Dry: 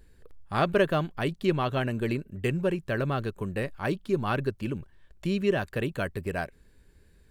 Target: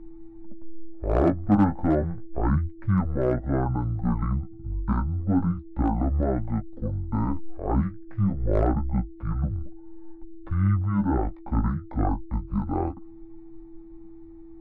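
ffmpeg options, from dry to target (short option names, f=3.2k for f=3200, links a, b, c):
-filter_complex "[0:a]lowpass=2.4k,lowshelf=f=110:g=8.5,acrossover=split=440[a][b];[a]alimiter=limit=-22.5dB:level=0:latency=1:release=136[c];[c][b]amix=inputs=2:normalize=0,flanger=delay=3.9:depth=5.8:regen=22:speed=0.59:shape=sinusoidal,asplit=2[d][e];[e]asoftclip=type=tanh:threshold=-21.5dB,volume=-12dB[f];[d][f]amix=inputs=2:normalize=0,aeval=exprs='val(0)+0.00355*sin(2*PI*660*n/s)':c=same,volume=18dB,asoftclip=hard,volume=-18dB,asetrate=22050,aresample=44100,volume=5.5dB"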